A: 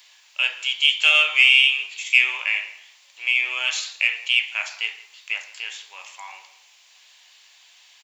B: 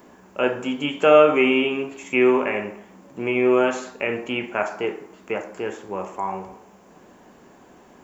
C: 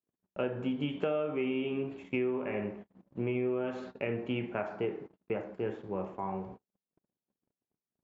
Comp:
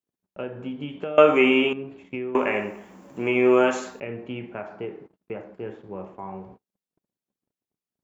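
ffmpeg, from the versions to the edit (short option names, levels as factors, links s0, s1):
-filter_complex "[1:a]asplit=2[s0][s1];[2:a]asplit=3[s2][s3][s4];[s2]atrim=end=1.182[s5];[s0]atrim=start=1.178:end=1.732[s6];[s3]atrim=start=1.728:end=2.352[s7];[s1]atrim=start=2.348:end=4.002[s8];[s4]atrim=start=3.998[s9];[s5][s6]acrossfade=d=0.004:c1=hsin:c2=hsin[s10];[s10][s7]acrossfade=d=0.004:c1=hsin:c2=hsin[s11];[s11][s8]acrossfade=d=0.004:c1=hsin:c2=hsin[s12];[s12][s9]acrossfade=d=0.004:c1=hsin:c2=hsin"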